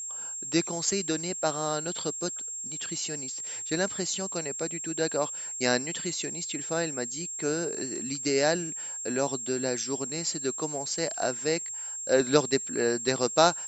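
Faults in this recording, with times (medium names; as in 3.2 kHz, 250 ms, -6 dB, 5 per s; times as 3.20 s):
whine 7.5 kHz -34 dBFS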